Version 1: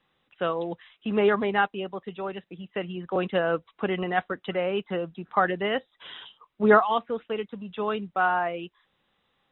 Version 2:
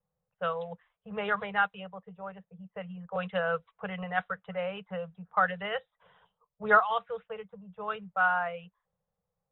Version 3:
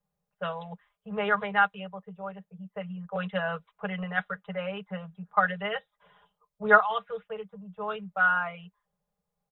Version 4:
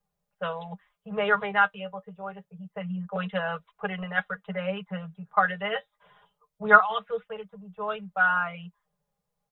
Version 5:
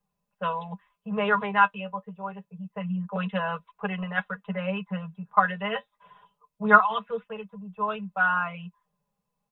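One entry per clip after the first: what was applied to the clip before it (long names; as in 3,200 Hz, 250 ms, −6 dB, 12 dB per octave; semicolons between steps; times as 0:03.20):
elliptic band-stop filter 190–460 Hz, stop band 40 dB; low-pass that shuts in the quiet parts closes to 490 Hz, open at −21.5 dBFS; dynamic equaliser 1,400 Hz, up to +7 dB, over −42 dBFS, Q 3.7; level −5 dB
comb filter 4.9 ms, depth 74%
flanger 0.26 Hz, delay 2.4 ms, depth 6.6 ms, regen +50%; level +6 dB
hollow resonant body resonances 240/1,000/2,600 Hz, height 13 dB, ringing for 50 ms; level −1.5 dB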